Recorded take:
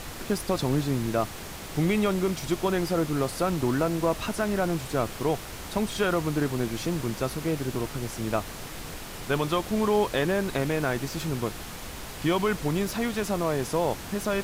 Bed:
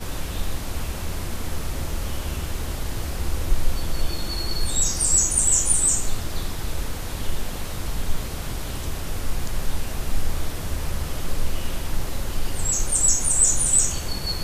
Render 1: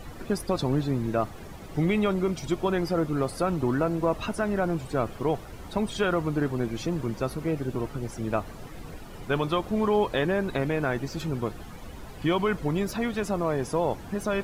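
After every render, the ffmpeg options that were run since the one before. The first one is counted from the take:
-af "afftdn=nr=13:nf=-39"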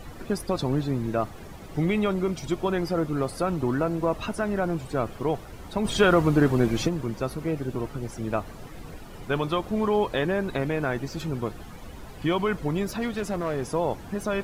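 -filter_complex "[0:a]asplit=3[s0][s1][s2];[s0]afade=t=out:st=5.84:d=0.02[s3];[s1]acontrast=75,afade=t=in:st=5.84:d=0.02,afade=t=out:st=6.87:d=0.02[s4];[s2]afade=t=in:st=6.87:d=0.02[s5];[s3][s4][s5]amix=inputs=3:normalize=0,asettb=1/sr,asplit=3[s6][s7][s8];[s6]atrim=end=12.914[s9];[s7]atrim=start=12.91:end=13.7,asetpts=PTS-STARTPTS,afade=t=in:d=0.004:c=qsin,afade=t=out:st=0.786:d=0.004:c=qsin,volume=11.9,asoftclip=hard,volume=0.0841[s10];[s8]atrim=start=13.696[s11];[s9][s10]acrossfade=d=0.004:c1=hsin:c2=qsin[s12];[s12][s11]acrossfade=d=0.004:c1=qsin:c2=hsin"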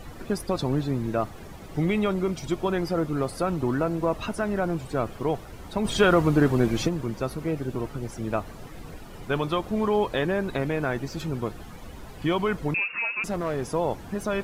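-filter_complex "[0:a]asettb=1/sr,asplit=3[s0][s1][s2];[s0]atrim=end=12.744[s3];[s1]atrim=start=12.74:end=13.24,asetpts=PTS-STARTPTS,afade=t=in:d=0.004:c=qsin,afade=t=out:st=0.496:d=0.004:c=qsin,lowpass=f=2400:t=q:w=0.5098,lowpass=f=2400:t=q:w=0.6013,lowpass=f=2400:t=q:w=0.9,lowpass=f=2400:t=q:w=2.563,afreqshift=-2800[s4];[s2]atrim=start=13.236[s5];[s3][s4]acrossfade=d=0.004:c1=hsin:c2=qsin[s6];[s6][s5]acrossfade=d=0.004:c1=qsin:c2=hsin"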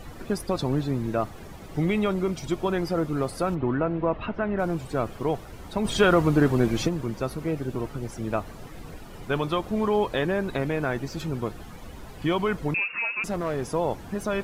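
-filter_complex "[0:a]asplit=3[s0][s1][s2];[s0]afade=t=out:st=3.54:d=0.02[s3];[s1]lowpass=f=3000:w=0.5412,lowpass=f=3000:w=1.3066,afade=t=in:st=3.54:d=0.02,afade=t=out:st=4.58:d=0.02[s4];[s2]afade=t=in:st=4.58:d=0.02[s5];[s3][s4][s5]amix=inputs=3:normalize=0"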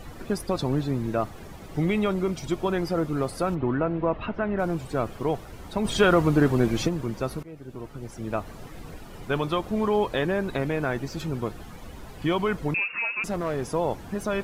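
-filter_complex "[0:a]asplit=2[s0][s1];[s0]atrim=end=7.43,asetpts=PTS-STARTPTS,afade=t=out:st=7.426:d=0.004:c=hsin:silence=0.11885[s2];[s1]atrim=start=7.43,asetpts=PTS-STARTPTS,afade=t=in:d=1.12:silence=0.11885[s3];[s2][s3]concat=n=2:v=0:a=1"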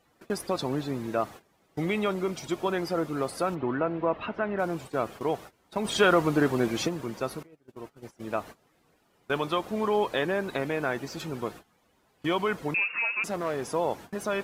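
-af "highpass=f=340:p=1,agate=range=0.1:threshold=0.00891:ratio=16:detection=peak"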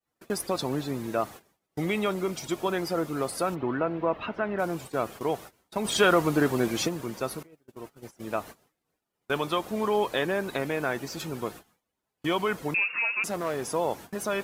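-af "agate=range=0.0224:threshold=0.00178:ratio=3:detection=peak,highshelf=f=6700:g=8.5"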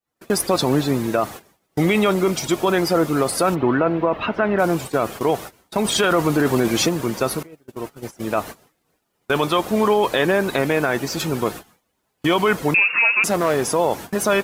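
-af "dynaudnorm=f=160:g=3:m=3.98,alimiter=limit=0.376:level=0:latency=1:release=10"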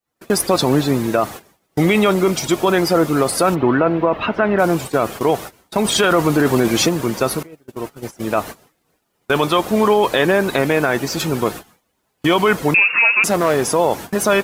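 -af "volume=1.41"

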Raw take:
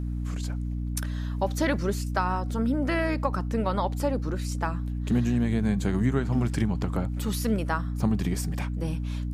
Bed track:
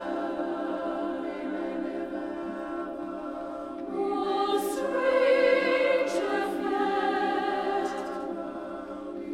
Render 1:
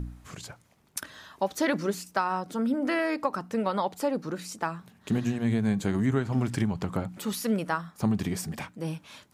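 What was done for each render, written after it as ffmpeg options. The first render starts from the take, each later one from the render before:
-af "bandreject=f=60:t=h:w=4,bandreject=f=120:t=h:w=4,bandreject=f=180:t=h:w=4,bandreject=f=240:t=h:w=4,bandreject=f=300:t=h:w=4"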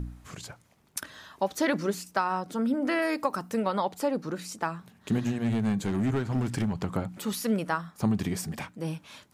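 -filter_complex "[0:a]asettb=1/sr,asplit=3[s0][s1][s2];[s0]atrim=end=3.024[s3];[s1]atrim=start=3.02:end=3.6,asetpts=PTS-STARTPTS,afade=t=in:d=0.004:c=qsin,afade=t=out:st=0.576:d=0.004:c=qsin,highshelf=f=7200:g=11.5[s4];[s2]atrim=start=3.596[s5];[s3][s4]acrossfade=d=0.004:c1=hsin:c2=qsin[s6];[s6][s5]acrossfade=d=0.004:c1=qsin:c2=hsin,asettb=1/sr,asplit=3[s7][s8][s9];[s7]atrim=end=5.194[s10];[s8]atrim=start=5.19:end=6.73,asetpts=PTS-STARTPTS,afade=t=in:d=0.004:c=qsin,afade=t=out:st=1.536:d=0.004:c=qsin,asoftclip=type=hard:threshold=0.0794[s11];[s9]atrim=start=6.726[s12];[s10][s11]acrossfade=d=0.004:c1=hsin:c2=qsin[s13];[s13][s12]acrossfade=d=0.004:c1=qsin:c2=hsin"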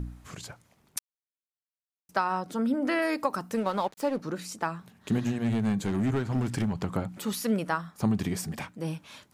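-filter_complex "[0:a]asettb=1/sr,asplit=3[s0][s1][s2];[s0]atrim=end=3.554[s3];[s1]atrim=start=3.55:end=4.21,asetpts=PTS-STARTPTS,afade=t=in:d=0.004:c=qsin,afade=t=out:st=0.656:d=0.004:c=qsin,aeval=exprs='sgn(val(0))*max(abs(val(0))-0.00531,0)':c=same[s4];[s2]atrim=start=4.206[s5];[s3][s4]acrossfade=d=0.004:c1=hsin:c2=qsin[s6];[s6][s5]acrossfade=d=0.004:c1=qsin:c2=hsin,asplit=3[s7][s8][s9];[s7]atrim=end=0.99,asetpts=PTS-STARTPTS,afade=t=out:st=0.986:d=0.004:c=hsin[s10];[s8]atrim=start=0.99:end=2.09,asetpts=PTS-STARTPTS,volume=0[s11];[s9]atrim=start=2.09,asetpts=PTS-STARTPTS,afade=t=in:d=0.004:c=hsin[s12];[s10][s11][s12]concat=n=3:v=0:a=1"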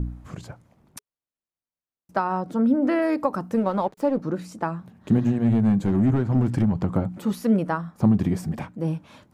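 -af "tiltshelf=f=1400:g=8,bandreject=f=420:w=12"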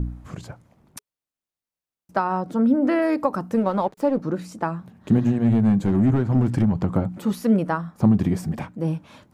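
-af "volume=1.19"

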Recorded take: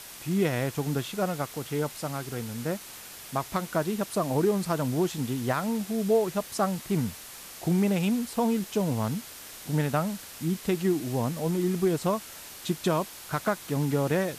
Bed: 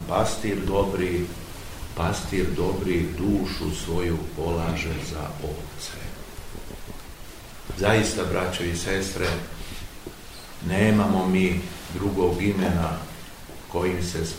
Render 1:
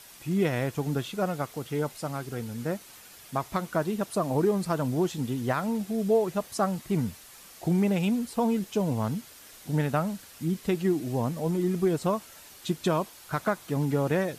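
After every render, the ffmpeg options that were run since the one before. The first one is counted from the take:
-af "afftdn=nr=7:nf=-44"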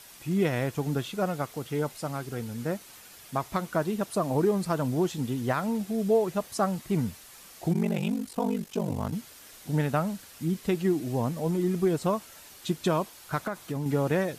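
-filter_complex "[0:a]asplit=3[s0][s1][s2];[s0]afade=t=out:st=7.73:d=0.02[s3];[s1]aeval=exprs='val(0)*sin(2*PI*24*n/s)':c=same,afade=t=in:st=7.73:d=0.02,afade=t=out:st=9.11:d=0.02[s4];[s2]afade=t=in:st=9.11:d=0.02[s5];[s3][s4][s5]amix=inputs=3:normalize=0,asettb=1/sr,asplit=3[s6][s7][s8];[s6]atrim=end=13.434[s9];[s7]atrim=start=13.43:end=13.86,asetpts=PTS-STARTPTS,afade=t=in:d=0.004:c=qsin,afade=t=out:st=0.426:d=0.004:c=qsin,acompressor=threshold=0.0447:ratio=5:attack=3.2:release=140:knee=1:detection=peak[s10];[s8]atrim=start=13.856[s11];[s9][s10]acrossfade=d=0.004:c1=hsin:c2=qsin[s12];[s12][s11]acrossfade=d=0.004:c1=qsin:c2=hsin"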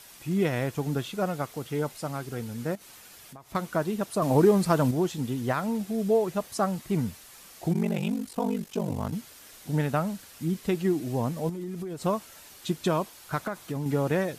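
-filter_complex "[0:a]asettb=1/sr,asplit=3[s0][s1][s2];[s0]atrim=end=2.754[s3];[s1]atrim=start=2.75:end=3.55,asetpts=PTS-STARTPTS,afade=t=in:d=0.004:c=qsin,afade=t=out:st=0.796:d=0.004:c=qsin,acompressor=threshold=0.00631:ratio=6:attack=3.2:release=140:knee=1:detection=peak[s4];[s2]atrim=start=3.546[s5];[s3][s4]acrossfade=d=0.004:c1=hsin:c2=qsin[s6];[s6][s5]acrossfade=d=0.004:c1=qsin:c2=hsin,asettb=1/sr,asplit=3[s7][s8][s9];[s7]atrim=end=11.494[s10];[s8]atrim=start=11.49:end=12.04,asetpts=PTS-STARTPTS,afade=t=in:d=0.004:c=qsin,afade=t=out:st=0.546:d=0.004:c=qsin,acompressor=threshold=0.0282:ratio=16:attack=3.2:release=140:knee=1:detection=peak[s11];[s9]atrim=start=12.036[s12];[s10][s11]acrossfade=d=0.004:c1=hsin:c2=qsin[s13];[s13][s12]acrossfade=d=0.004:c1=qsin:c2=hsin,asplit=3[s14][s15][s16];[s14]atrim=end=4.222[s17];[s15]atrim=start=4.218:end=4.912,asetpts=PTS-STARTPTS,volume=1.78[s18];[s16]atrim=start=4.908[s19];[s17][s18]acrossfade=d=0.004:c1=hsin:c2=hsin[s20];[s20][s19]acrossfade=d=0.004:c1=hsin:c2=hsin"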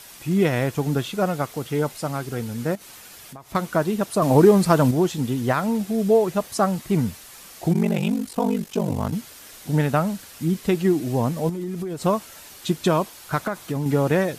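-af "volume=2"

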